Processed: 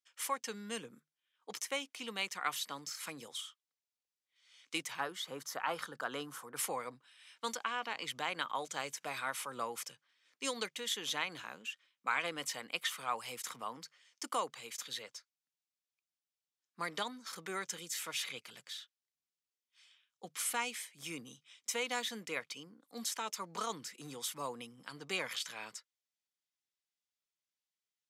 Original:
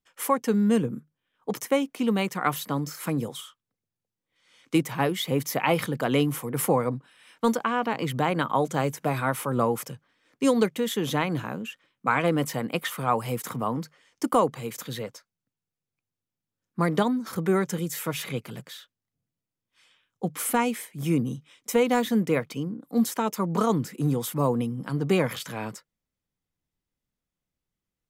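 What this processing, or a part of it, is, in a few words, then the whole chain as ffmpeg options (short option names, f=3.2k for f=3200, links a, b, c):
piezo pickup straight into a mixer: -filter_complex "[0:a]asettb=1/sr,asplit=3[a][b][c];[a]atrim=end=5.004[d];[b]atrim=start=5:end=6.56,asetpts=PTS-STARTPTS,afade=t=in:d=0.004:c=qsin,afade=t=out:st=1.556:d=0.004:c=qsin,highshelf=f=1.8k:t=q:w=3:g=-6.5[e];[c]atrim=start=6.556[f];[d][e]acrossfade=d=0.004:c1=hsin:c2=qsin[g];[g][f]acrossfade=d=0.004:c1=qsin:c2=hsin,lowpass=5.1k,aderivative,volume=5dB"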